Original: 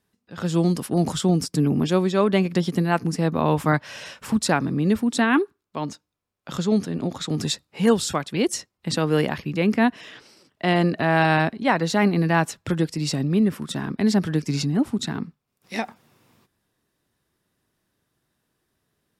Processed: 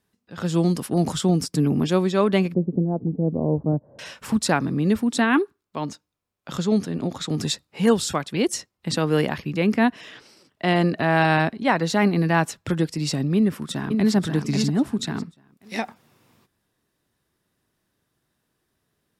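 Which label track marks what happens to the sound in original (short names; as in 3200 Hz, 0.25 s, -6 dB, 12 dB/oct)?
2.540000	3.990000	inverse Chebyshev low-pass stop band from 2600 Hz, stop band 70 dB
13.360000	14.150000	echo throw 0.54 s, feedback 25%, level -5 dB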